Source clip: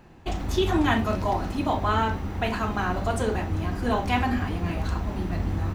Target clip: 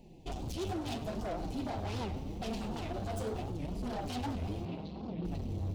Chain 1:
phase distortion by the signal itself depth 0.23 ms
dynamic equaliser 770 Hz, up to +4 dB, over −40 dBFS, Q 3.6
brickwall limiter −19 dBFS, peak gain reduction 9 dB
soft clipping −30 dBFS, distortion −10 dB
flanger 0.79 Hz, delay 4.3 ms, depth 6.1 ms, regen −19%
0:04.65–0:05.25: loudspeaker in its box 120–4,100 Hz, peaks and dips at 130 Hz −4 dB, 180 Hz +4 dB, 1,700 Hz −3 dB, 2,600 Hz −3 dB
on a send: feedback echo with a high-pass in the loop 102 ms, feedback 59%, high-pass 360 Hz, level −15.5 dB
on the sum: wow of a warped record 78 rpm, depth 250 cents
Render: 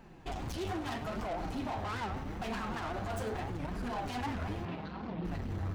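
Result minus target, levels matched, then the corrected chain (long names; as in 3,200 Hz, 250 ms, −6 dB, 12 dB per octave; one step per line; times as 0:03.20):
1,000 Hz band +3.5 dB
phase distortion by the signal itself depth 0.23 ms
dynamic equaliser 770 Hz, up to +4 dB, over −40 dBFS, Q 3.6
Butterworth band-reject 1,400 Hz, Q 0.66
brickwall limiter −19 dBFS, peak gain reduction 7.5 dB
soft clipping −30 dBFS, distortion −10 dB
flanger 0.79 Hz, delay 4.3 ms, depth 6.1 ms, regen −19%
0:04.65–0:05.25: loudspeaker in its box 120–4,100 Hz, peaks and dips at 130 Hz −4 dB, 180 Hz +4 dB, 1,700 Hz −3 dB, 2,600 Hz −3 dB
on a send: feedback echo with a high-pass in the loop 102 ms, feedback 59%, high-pass 360 Hz, level −15.5 dB
on the sum: wow of a warped record 78 rpm, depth 250 cents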